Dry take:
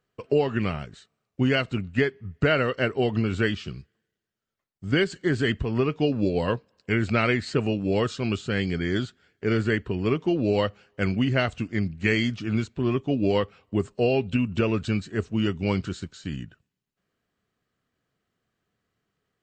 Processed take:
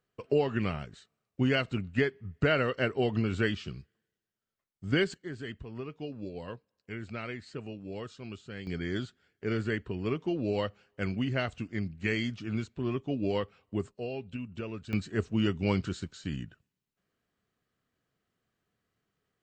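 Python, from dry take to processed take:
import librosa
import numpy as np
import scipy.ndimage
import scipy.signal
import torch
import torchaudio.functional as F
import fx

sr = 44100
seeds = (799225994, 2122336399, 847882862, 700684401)

y = fx.gain(x, sr, db=fx.steps((0.0, -4.5), (5.14, -16.0), (8.67, -7.5), (13.91, -14.5), (14.93, -3.0)))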